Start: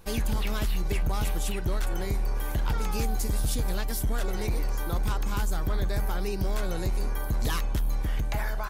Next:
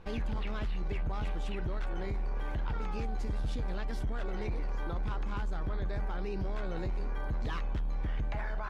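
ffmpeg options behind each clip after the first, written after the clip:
ffmpeg -i in.wav -af "lowpass=2800,alimiter=level_in=4dB:limit=-24dB:level=0:latency=1:release=12,volume=-4dB" out.wav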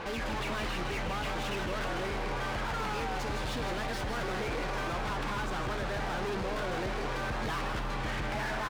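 ffmpeg -i in.wav -filter_complex "[0:a]asplit=2[link_01][link_02];[link_02]highpass=frequency=720:poles=1,volume=35dB,asoftclip=type=tanh:threshold=-27.5dB[link_03];[link_01][link_03]amix=inputs=2:normalize=0,lowpass=frequency=3700:poles=1,volume=-6dB,asplit=9[link_04][link_05][link_06][link_07][link_08][link_09][link_10][link_11][link_12];[link_05]adelay=157,afreqshift=91,volume=-7dB[link_13];[link_06]adelay=314,afreqshift=182,volume=-11.6dB[link_14];[link_07]adelay=471,afreqshift=273,volume=-16.2dB[link_15];[link_08]adelay=628,afreqshift=364,volume=-20.7dB[link_16];[link_09]adelay=785,afreqshift=455,volume=-25.3dB[link_17];[link_10]adelay=942,afreqshift=546,volume=-29.9dB[link_18];[link_11]adelay=1099,afreqshift=637,volume=-34.5dB[link_19];[link_12]adelay=1256,afreqshift=728,volume=-39.1dB[link_20];[link_04][link_13][link_14][link_15][link_16][link_17][link_18][link_19][link_20]amix=inputs=9:normalize=0,volume=-2dB" out.wav

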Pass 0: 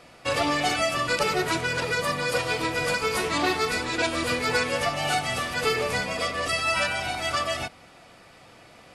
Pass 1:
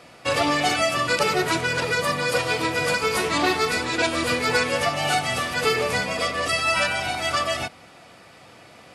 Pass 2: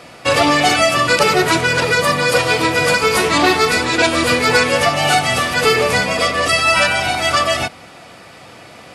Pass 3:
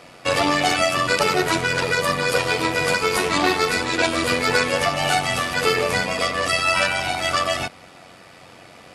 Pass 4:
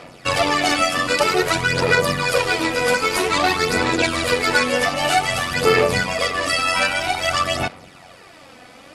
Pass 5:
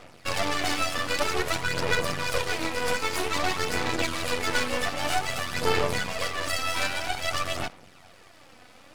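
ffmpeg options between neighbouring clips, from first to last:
ffmpeg -i in.wav -af "highpass=69,volume=3dB" out.wav
ffmpeg -i in.wav -af "acontrast=67,volume=2dB" out.wav
ffmpeg -i in.wav -af "tremolo=f=91:d=0.519,volume=-3.5dB" out.wav
ffmpeg -i in.wav -af "aphaser=in_gain=1:out_gain=1:delay=4:decay=0.5:speed=0.52:type=sinusoidal" out.wav
ffmpeg -i in.wav -af "aeval=exprs='max(val(0),0)':channel_layout=same,volume=-4.5dB" out.wav

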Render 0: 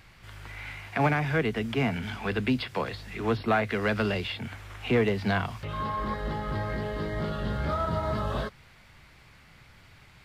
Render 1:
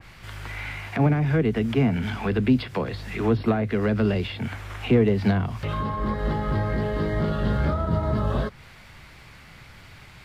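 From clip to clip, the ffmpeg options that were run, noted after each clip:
ffmpeg -i in.wav -filter_complex "[0:a]acrossover=split=460[link_01][link_02];[link_02]acompressor=threshold=-37dB:ratio=12[link_03];[link_01][link_03]amix=inputs=2:normalize=0,adynamicequalizer=threshold=0.00316:dfrequency=2300:dqfactor=0.7:tfrequency=2300:tqfactor=0.7:attack=5:release=100:ratio=0.375:range=1.5:mode=cutabove:tftype=highshelf,volume=7.5dB" out.wav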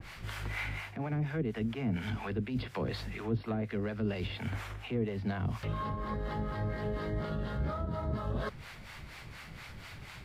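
ffmpeg -i in.wav -filter_complex "[0:a]areverse,acompressor=threshold=-32dB:ratio=4,areverse,acrossover=split=540[link_01][link_02];[link_01]aeval=exprs='val(0)*(1-0.7/2+0.7/2*cos(2*PI*4.2*n/s))':channel_layout=same[link_03];[link_02]aeval=exprs='val(0)*(1-0.7/2-0.7/2*cos(2*PI*4.2*n/s))':channel_layout=same[link_04];[link_03][link_04]amix=inputs=2:normalize=0,volume=2.5dB" out.wav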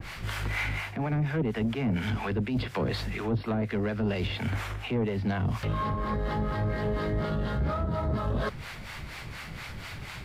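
ffmpeg -i in.wav -af "asoftclip=type=tanh:threshold=-28.5dB,volume=7.5dB" out.wav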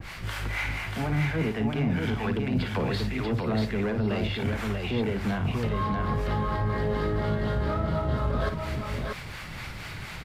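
ffmpeg -i in.wav -af "aecho=1:1:55|637:0.335|0.668" out.wav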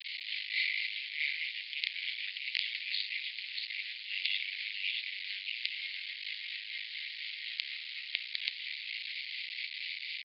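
ffmpeg -i in.wav -af "aresample=11025,acrusher=bits=4:dc=4:mix=0:aa=0.000001,aresample=44100,asuperpass=centerf=3100:order=12:qfactor=1.2,volume=6.5dB" out.wav

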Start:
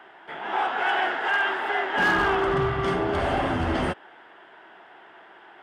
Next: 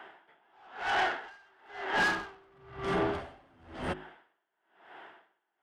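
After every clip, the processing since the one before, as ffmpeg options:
ffmpeg -i in.wav -af "bandreject=frequency=52.63:width_type=h:width=4,bandreject=frequency=105.26:width_type=h:width=4,bandreject=frequency=157.89:width_type=h:width=4,bandreject=frequency=210.52:width_type=h:width=4,bandreject=frequency=263.15:width_type=h:width=4,bandreject=frequency=315.78:width_type=h:width=4,bandreject=frequency=368.41:width_type=h:width=4,asoftclip=type=tanh:threshold=-22dB,aeval=exprs='val(0)*pow(10,-35*(0.5-0.5*cos(2*PI*1*n/s))/20)':channel_layout=same" out.wav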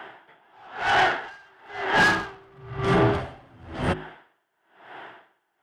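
ffmpeg -i in.wav -af "equalizer=frequency=120:width_type=o:width=0.76:gain=10,volume=8.5dB" out.wav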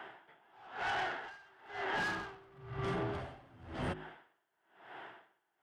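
ffmpeg -i in.wav -af "acompressor=threshold=-26dB:ratio=6,volume=-8dB" out.wav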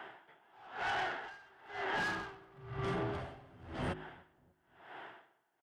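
ffmpeg -i in.wav -filter_complex "[0:a]asplit=2[link_01][link_02];[link_02]adelay=296,lowpass=frequency=850:poles=1,volume=-24dB,asplit=2[link_03][link_04];[link_04]adelay=296,lowpass=frequency=850:poles=1,volume=0.49,asplit=2[link_05][link_06];[link_06]adelay=296,lowpass=frequency=850:poles=1,volume=0.49[link_07];[link_01][link_03][link_05][link_07]amix=inputs=4:normalize=0" out.wav

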